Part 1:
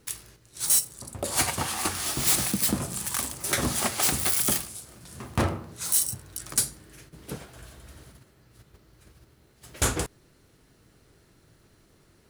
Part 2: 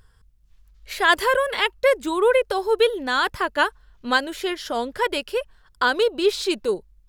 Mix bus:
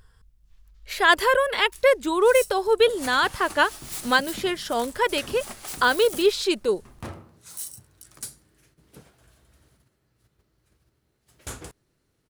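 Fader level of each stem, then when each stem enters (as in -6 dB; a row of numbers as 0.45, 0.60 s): -12.0, 0.0 dB; 1.65, 0.00 s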